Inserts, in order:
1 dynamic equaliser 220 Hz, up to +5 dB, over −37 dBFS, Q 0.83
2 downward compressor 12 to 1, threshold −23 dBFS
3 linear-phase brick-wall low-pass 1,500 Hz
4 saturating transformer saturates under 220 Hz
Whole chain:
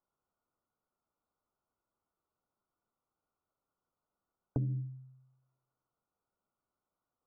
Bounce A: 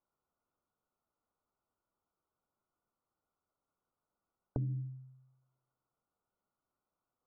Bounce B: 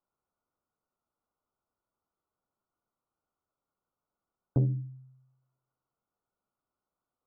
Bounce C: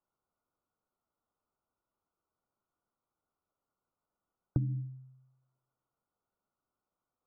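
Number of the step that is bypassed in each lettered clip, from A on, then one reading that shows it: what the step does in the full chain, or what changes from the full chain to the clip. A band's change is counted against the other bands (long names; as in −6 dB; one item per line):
1, 1 kHz band +2.0 dB
2, average gain reduction 2.5 dB
4, change in crest factor +2.0 dB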